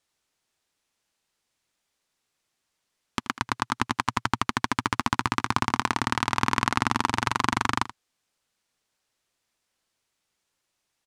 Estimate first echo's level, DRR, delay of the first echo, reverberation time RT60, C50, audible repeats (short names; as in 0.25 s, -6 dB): -15.5 dB, none, 80 ms, none, none, 1